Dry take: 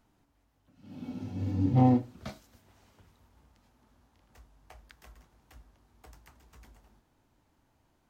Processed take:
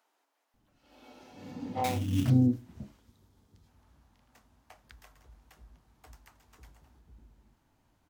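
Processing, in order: 2.98–3.67 spectral gain 520–3100 Hz -6 dB; bands offset in time highs, lows 0.54 s, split 420 Hz; 1.84–2.3 sample-rate reducer 3100 Hz, jitter 20%

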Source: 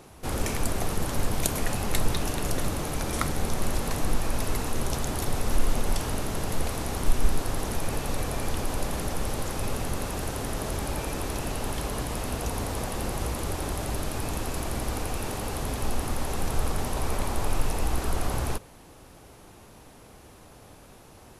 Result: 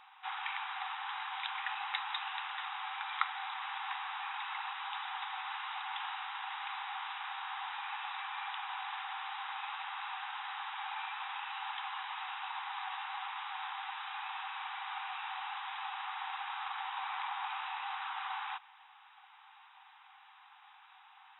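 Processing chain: FFT band-pass 750–3900 Hz; gain -1.5 dB

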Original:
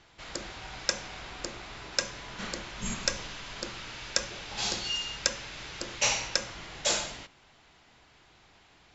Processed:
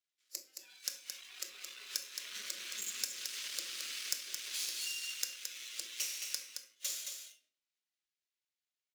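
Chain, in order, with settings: Doppler pass-by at 3.51, 5 m/s, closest 3.7 m; spectral noise reduction 28 dB; half-wave rectifier; compressor 5:1, threshold -50 dBFS, peak gain reduction 22 dB; HPF 260 Hz 6 dB/oct; fixed phaser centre 350 Hz, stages 4; shoebox room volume 670 m³, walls furnished, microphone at 1 m; added harmonics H 8 -27 dB, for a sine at -28.5 dBFS; tilt +4 dB/oct; echo 0.22 s -6 dB; gain +7 dB

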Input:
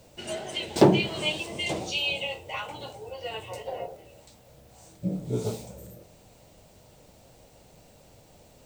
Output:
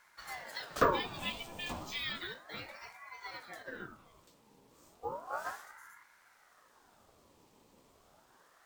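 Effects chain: careless resampling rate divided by 2×, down none, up hold; ring modulator with a swept carrier 940 Hz, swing 65%, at 0.33 Hz; gain -7.5 dB

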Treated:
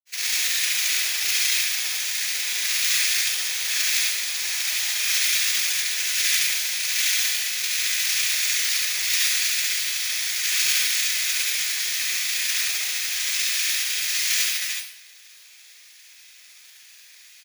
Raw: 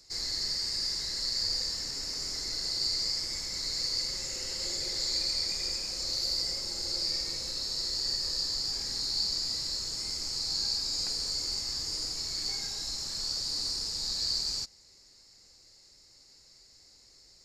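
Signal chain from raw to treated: inverse Chebyshev high-pass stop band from 290 Hz, stop band 60 dB; comb 5.1 ms; noise vocoder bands 3; grains, pitch spread up and down by 0 st; careless resampling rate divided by 3×, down filtered, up zero stuff; reverb RT60 0.65 s, pre-delay 66 ms, DRR -1 dB

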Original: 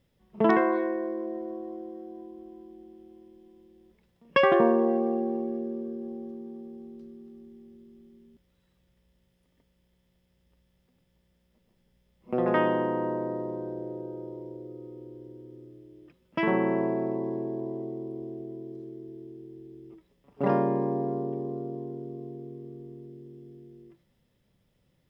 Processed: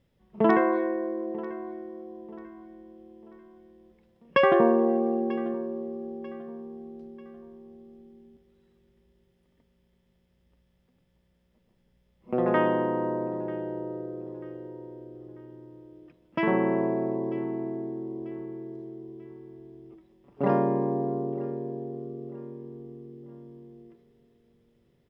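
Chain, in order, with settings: high shelf 4100 Hz -7 dB; feedback echo 0.941 s, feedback 38%, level -19 dB; gain +1 dB

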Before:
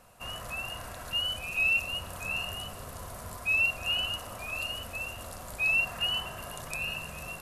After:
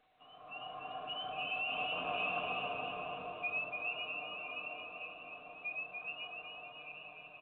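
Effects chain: Doppler pass-by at 2.07, 12 m/s, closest 3.6 m; resonant low shelf 460 Hz +7 dB, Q 1.5; comb 6.6 ms, depth 95%; dynamic EQ 2500 Hz, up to -4 dB, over -45 dBFS, Q 2.3; AGC gain up to 11 dB; overloaded stage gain 28 dB; vowel filter a; bouncing-ball echo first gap 0.29 s, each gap 0.9×, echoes 5; on a send at -8.5 dB: reverb RT60 0.25 s, pre-delay 3 ms; on the sum: gain +4 dB; A-law 64 kbps 8000 Hz

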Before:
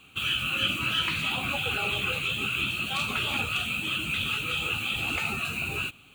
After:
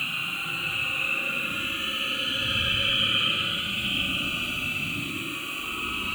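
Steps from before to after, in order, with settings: Paulstretch 19×, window 0.05 s, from 0.49

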